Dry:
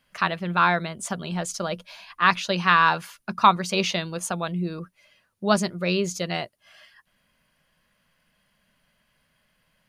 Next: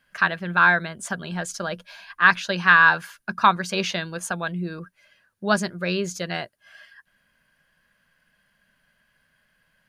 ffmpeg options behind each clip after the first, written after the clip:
-af "equalizer=f=1600:w=6.2:g=13,volume=0.841"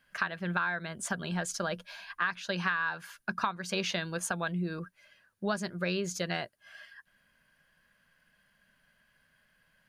-af "acompressor=threshold=0.0562:ratio=10,volume=0.75"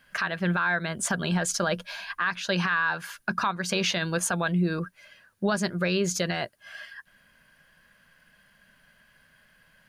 -af "alimiter=level_in=1.06:limit=0.0631:level=0:latency=1:release=14,volume=0.944,volume=2.66"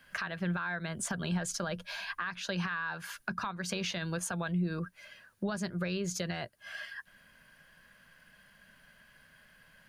-filter_complex "[0:a]acrossover=split=130[s0][s1];[s1]acompressor=threshold=0.0158:ratio=3[s2];[s0][s2]amix=inputs=2:normalize=0"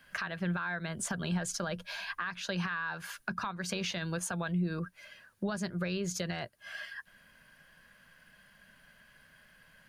-ar 48000 -c:a aac -b:a 128k

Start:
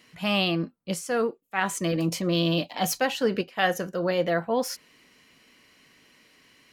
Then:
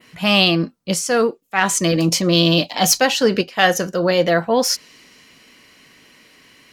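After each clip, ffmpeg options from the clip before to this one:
-af "acontrast=38,adynamicequalizer=threshold=0.00891:dfrequency=5500:dqfactor=0.98:tfrequency=5500:tqfactor=0.98:attack=5:release=100:ratio=0.375:range=4:mode=boostabove:tftype=bell,volume=1.41"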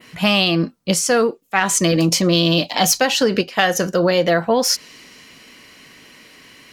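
-af "acompressor=threshold=0.141:ratio=6,volume=1.68"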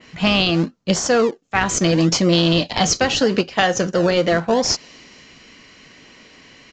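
-filter_complex "[0:a]asplit=2[s0][s1];[s1]acrusher=samples=34:mix=1:aa=0.000001:lfo=1:lforange=34:lforate=0.76,volume=0.282[s2];[s0][s2]amix=inputs=2:normalize=0,aresample=16000,aresample=44100,volume=0.841"

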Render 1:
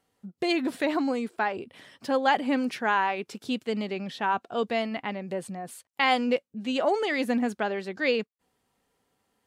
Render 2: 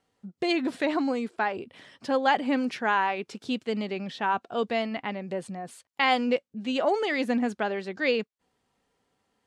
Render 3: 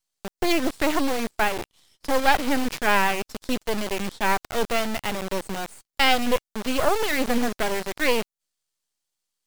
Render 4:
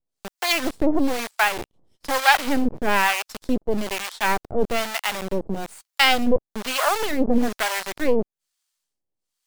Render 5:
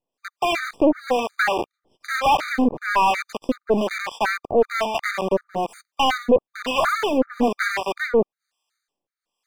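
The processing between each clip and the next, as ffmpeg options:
-af "lowpass=8000"
-filter_complex "[0:a]acrossover=split=4000[s0][s1];[s0]acrusher=bits=5:mix=0:aa=0.000001[s2];[s2][s1]amix=inputs=2:normalize=0,aeval=exprs='max(val(0),0)':c=same,volume=2.37"
-filter_complex "[0:a]acrossover=split=680[s0][s1];[s0]aeval=exprs='val(0)*(1-1/2+1/2*cos(2*PI*1.1*n/s))':c=same[s2];[s1]aeval=exprs='val(0)*(1-1/2-1/2*cos(2*PI*1.1*n/s))':c=same[s3];[s2][s3]amix=inputs=2:normalize=0,volume=2"
-filter_complex "[0:a]asplit=2[s0][s1];[s1]highpass=f=720:p=1,volume=15.8,asoftclip=type=tanh:threshold=0.891[s2];[s0][s2]amix=inputs=2:normalize=0,lowpass=f=1200:p=1,volume=0.501,afftfilt=real='re*gt(sin(2*PI*2.7*pts/sr)*(1-2*mod(floor(b*sr/1024/1200),2)),0)':imag='im*gt(sin(2*PI*2.7*pts/sr)*(1-2*mod(floor(b*sr/1024/1200),2)),0)':win_size=1024:overlap=0.75,volume=0.708"

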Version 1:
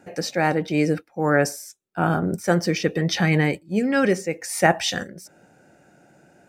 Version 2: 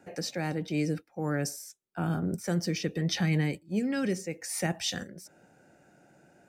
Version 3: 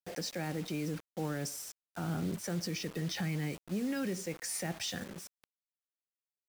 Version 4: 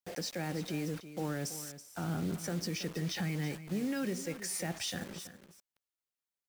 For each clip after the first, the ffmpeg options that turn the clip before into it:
-filter_complex "[0:a]acrossover=split=300|3000[s0][s1][s2];[s1]acompressor=threshold=0.0251:ratio=3[s3];[s0][s3][s2]amix=inputs=3:normalize=0,volume=0.531"
-af "alimiter=level_in=1.5:limit=0.0631:level=0:latency=1:release=105,volume=0.668,acrusher=bits=7:mix=0:aa=0.000001"
-af "aecho=1:1:328:0.224"

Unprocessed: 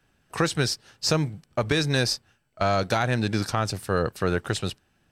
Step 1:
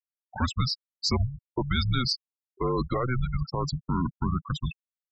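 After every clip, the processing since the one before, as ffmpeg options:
-af "alimiter=limit=0.188:level=0:latency=1:release=77,afreqshift=-250,afftfilt=real='re*gte(hypot(re,im),0.0708)':imag='im*gte(hypot(re,im),0.0708)':win_size=1024:overlap=0.75"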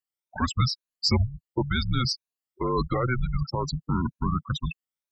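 -af "afftfilt=real='re*pow(10,11/40*sin(2*PI*(1.5*log(max(b,1)*sr/1024/100)/log(2)-(2.1)*(pts-256)/sr)))':imag='im*pow(10,11/40*sin(2*PI*(1.5*log(max(b,1)*sr/1024/100)/log(2)-(2.1)*(pts-256)/sr)))':win_size=1024:overlap=0.75"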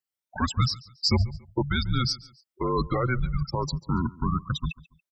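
-af "aecho=1:1:141|282:0.0841|0.0286"

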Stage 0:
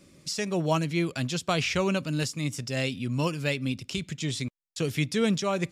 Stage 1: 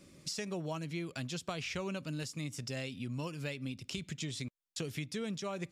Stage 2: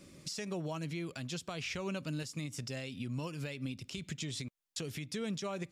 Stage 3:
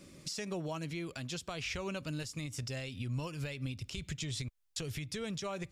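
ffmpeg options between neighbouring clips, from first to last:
-af "acompressor=threshold=0.02:ratio=5,volume=0.75"
-af "alimiter=level_in=2.37:limit=0.0631:level=0:latency=1:release=169,volume=0.422,volume=1.33"
-af "asubboost=boost=10:cutoff=70,volume=1.12"

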